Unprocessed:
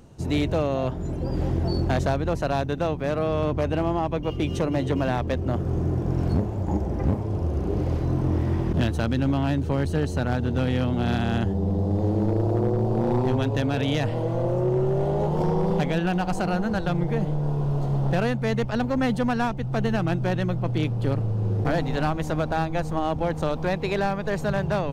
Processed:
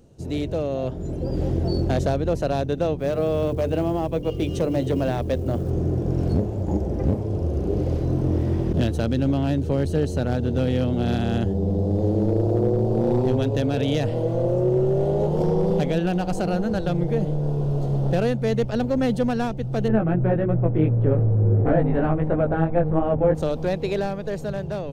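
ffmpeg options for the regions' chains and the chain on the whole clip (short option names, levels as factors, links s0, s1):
-filter_complex "[0:a]asettb=1/sr,asplit=3[s0][s1][s2];[s0]atrim=end=2.994[s3];[s1]atrim=start=2.99:end=5.71,asetpts=PTS-STARTPTS,afade=t=in:d=0.004:c=qsin,afade=t=out:st=2.716:d=0.004:c=qsin,acrusher=bits=9:mode=log:mix=0:aa=0.000001,bandreject=f=50:t=h:w=6,bandreject=f=100:t=h:w=6,bandreject=f=150:t=h:w=6,bandreject=f=200:t=h:w=6,bandreject=f=250:t=h:w=6,bandreject=f=300:t=h:w=6,bandreject=f=350:t=h:w=6,bandreject=f=400:t=h:w=6,bandreject=f=450:t=h:w=6,bandreject=f=500:t=h:w=6[s4];[s2]atrim=start=5.706[s5];[s3][s4]acrossfade=d=0.004:c1=hsin:c2=qsin[s6];[s6][s5]acrossfade=d=0.004:c1=qsin:c2=hsin,asettb=1/sr,asplit=3[s7][s8][s9];[s7]atrim=end=19.884[s10];[s8]atrim=start=19.88:end=23.35,asetpts=PTS-STARTPTS,afade=t=in:d=0.004:c=qsin,afade=t=out:st=3.466:d=0.004:c=qsin,lowpass=f=2000:w=0.5412,lowpass=f=2000:w=1.3066,acontrast=76,flanger=delay=17:depth=2.6:speed=2.8[s11];[s9]atrim=start=23.346[s12];[s10][s11]acrossfade=d=0.004:c1=hsin:c2=qsin[s13];[s13][s12]acrossfade=d=0.004:c1=qsin:c2=hsin,equalizer=f=500:t=o:w=1:g=5,equalizer=f=1000:t=o:w=1:g=-7,equalizer=f=2000:t=o:w=1:g=-4,dynaudnorm=f=110:g=17:m=1.78,volume=0.631"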